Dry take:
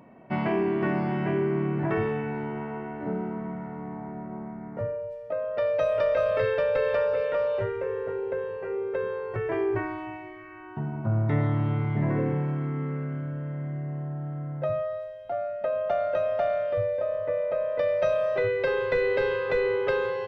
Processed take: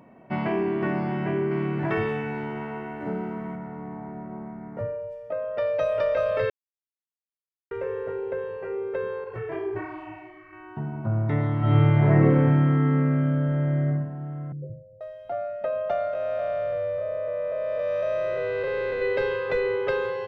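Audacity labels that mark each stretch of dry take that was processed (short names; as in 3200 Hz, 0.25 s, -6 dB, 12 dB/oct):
1.510000	3.560000	high shelf 2400 Hz +10.5 dB
4.940000	5.600000	notch 4100 Hz
6.500000	7.710000	mute
9.240000	10.530000	detuned doubles each way 40 cents
11.590000	13.870000	reverb throw, RT60 0.92 s, DRR -7 dB
14.520000	15.010000	rippled Chebyshev low-pass 520 Hz, ripple 6 dB
16.130000	19.020000	time blur width 0.403 s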